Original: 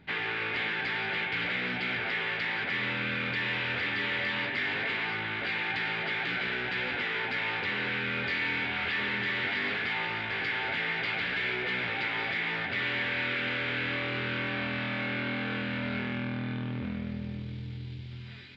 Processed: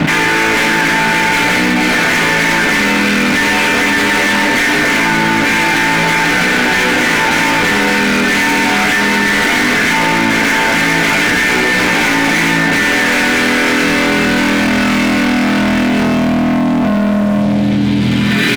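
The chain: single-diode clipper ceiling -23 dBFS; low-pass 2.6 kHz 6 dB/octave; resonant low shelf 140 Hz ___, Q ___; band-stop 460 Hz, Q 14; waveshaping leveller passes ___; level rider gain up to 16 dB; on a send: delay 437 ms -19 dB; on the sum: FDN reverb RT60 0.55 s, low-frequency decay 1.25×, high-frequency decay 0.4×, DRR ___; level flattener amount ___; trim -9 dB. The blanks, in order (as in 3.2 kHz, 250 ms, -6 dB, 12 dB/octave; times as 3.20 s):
-11 dB, 3, 5, 2 dB, 100%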